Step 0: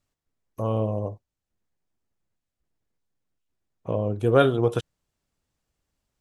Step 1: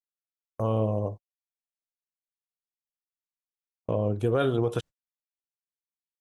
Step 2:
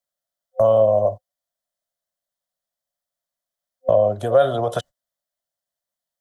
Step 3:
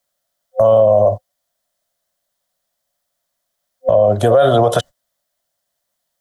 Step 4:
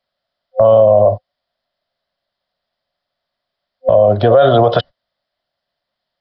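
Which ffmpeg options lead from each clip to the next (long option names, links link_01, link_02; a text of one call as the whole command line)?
ffmpeg -i in.wav -af "agate=range=-43dB:threshold=-36dB:ratio=16:detection=peak,alimiter=limit=-15dB:level=0:latency=1:release=112" out.wav
ffmpeg -i in.wav -filter_complex "[0:a]superequalizer=6b=0.447:7b=0.631:8b=3.55:12b=0.316,acrossover=split=120|390[link_01][link_02][link_03];[link_01]acompressor=threshold=-44dB:ratio=4[link_04];[link_02]acompressor=threshold=-43dB:ratio=4[link_05];[link_03]acompressor=threshold=-20dB:ratio=4[link_06];[link_04][link_05][link_06]amix=inputs=3:normalize=0,volume=8.5dB" out.wav
ffmpeg -i in.wav -af "alimiter=level_in=15dB:limit=-1dB:release=50:level=0:latency=1,volume=-2.5dB" out.wav
ffmpeg -i in.wav -af "aresample=11025,aresample=44100,volume=2dB" out.wav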